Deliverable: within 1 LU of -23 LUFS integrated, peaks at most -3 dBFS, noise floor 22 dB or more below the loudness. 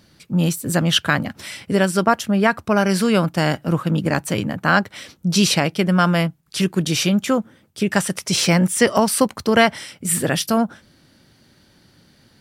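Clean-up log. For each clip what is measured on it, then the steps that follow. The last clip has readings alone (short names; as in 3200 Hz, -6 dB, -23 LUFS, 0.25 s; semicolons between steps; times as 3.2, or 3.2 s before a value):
loudness -19.0 LUFS; peak -2.5 dBFS; loudness target -23.0 LUFS
-> gain -4 dB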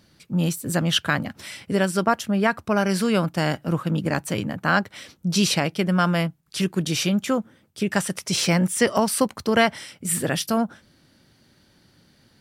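loudness -23.0 LUFS; peak -6.5 dBFS; noise floor -60 dBFS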